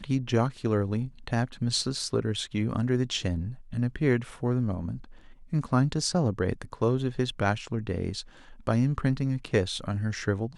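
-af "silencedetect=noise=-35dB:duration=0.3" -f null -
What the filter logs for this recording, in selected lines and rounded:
silence_start: 5.04
silence_end: 5.53 | silence_duration: 0.48
silence_start: 8.21
silence_end: 8.67 | silence_duration: 0.46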